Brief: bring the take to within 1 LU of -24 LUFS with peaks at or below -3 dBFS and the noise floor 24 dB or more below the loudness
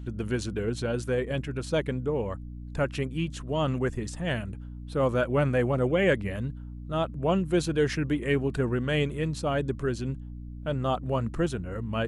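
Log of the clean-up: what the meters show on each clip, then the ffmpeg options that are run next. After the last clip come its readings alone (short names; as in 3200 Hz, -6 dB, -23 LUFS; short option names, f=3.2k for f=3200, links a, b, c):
hum 60 Hz; harmonics up to 300 Hz; hum level -37 dBFS; loudness -28.5 LUFS; peak -12.0 dBFS; loudness target -24.0 LUFS
-> -af "bandreject=f=60:t=h:w=6,bandreject=f=120:t=h:w=6,bandreject=f=180:t=h:w=6,bandreject=f=240:t=h:w=6,bandreject=f=300:t=h:w=6"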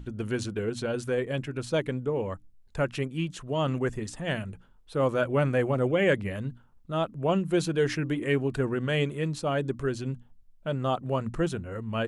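hum none; loudness -29.0 LUFS; peak -12.5 dBFS; loudness target -24.0 LUFS
-> -af "volume=5dB"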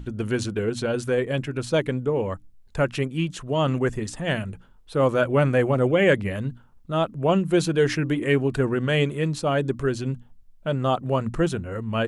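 loudness -24.0 LUFS; peak -7.5 dBFS; noise floor -52 dBFS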